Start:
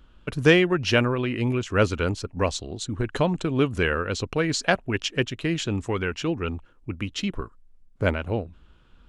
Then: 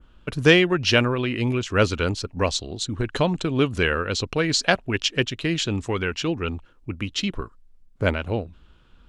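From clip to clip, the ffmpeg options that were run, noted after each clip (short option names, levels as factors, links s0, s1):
-af "adynamicequalizer=threshold=0.00708:dfrequency=4200:dqfactor=1:tfrequency=4200:tqfactor=1:attack=5:release=100:ratio=0.375:range=3:mode=boostabove:tftype=bell,volume=1.12"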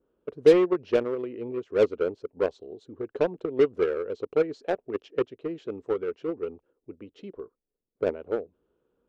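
-filter_complex "[0:a]bandpass=f=440:t=q:w=4.1:csg=0,asplit=2[s0][s1];[s1]acrusher=bits=3:mix=0:aa=0.5,volume=0.631[s2];[s0][s2]amix=inputs=2:normalize=0"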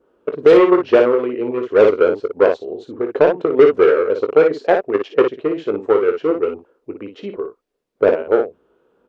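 -filter_complex "[0:a]aecho=1:1:20|57:0.316|0.447,asplit=2[s0][s1];[s1]highpass=f=720:p=1,volume=5.62,asoftclip=type=tanh:threshold=0.562[s2];[s0][s2]amix=inputs=2:normalize=0,lowpass=f=1700:p=1,volume=0.501,alimiter=level_in=2.99:limit=0.891:release=50:level=0:latency=1,volume=0.891"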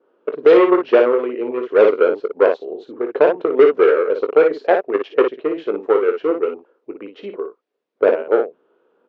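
-af "highpass=290,lowpass=3900"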